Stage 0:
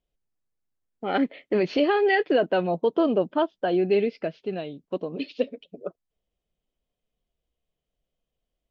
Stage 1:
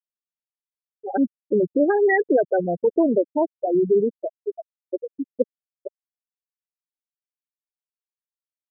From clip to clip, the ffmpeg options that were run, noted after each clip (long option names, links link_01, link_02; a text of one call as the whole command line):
ffmpeg -i in.wav -af "afftfilt=real='re*gte(hypot(re,im),0.282)':imag='im*gte(hypot(re,im),0.282)':win_size=1024:overlap=0.75,equalizer=frequency=980:width=1.5:gain=-3.5,volume=4dB" out.wav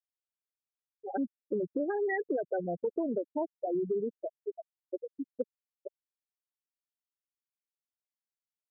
ffmpeg -i in.wav -af "acompressor=threshold=-19dB:ratio=6,volume=-9dB" out.wav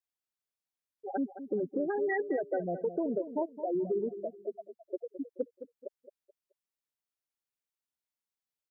ffmpeg -i in.wav -filter_complex "[0:a]asplit=2[link_01][link_02];[link_02]adelay=215,lowpass=frequency=1700:poles=1,volume=-11.5dB,asplit=2[link_03][link_04];[link_04]adelay=215,lowpass=frequency=1700:poles=1,volume=0.31,asplit=2[link_05][link_06];[link_06]adelay=215,lowpass=frequency=1700:poles=1,volume=0.31[link_07];[link_01][link_03][link_05][link_07]amix=inputs=4:normalize=0" out.wav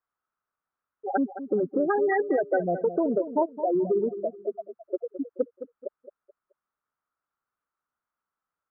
ffmpeg -i in.wav -af "lowpass=frequency=1300:width_type=q:width=5,volume=6dB" out.wav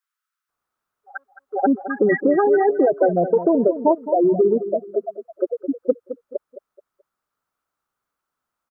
ffmpeg -i in.wav -filter_complex "[0:a]acrossover=split=1400[link_01][link_02];[link_01]adelay=490[link_03];[link_03][link_02]amix=inputs=2:normalize=0,volume=8dB" out.wav